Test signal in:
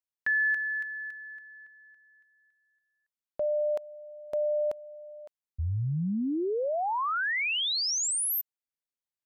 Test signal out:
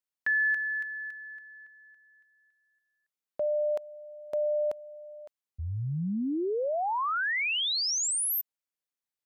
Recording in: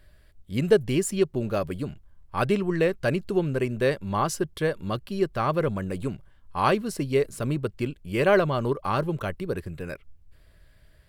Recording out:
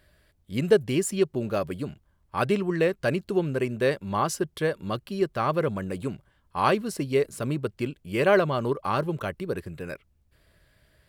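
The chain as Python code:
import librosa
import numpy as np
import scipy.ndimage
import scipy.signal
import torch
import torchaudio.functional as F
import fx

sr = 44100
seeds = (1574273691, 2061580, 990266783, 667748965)

y = fx.highpass(x, sr, hz=110.0, slope=6)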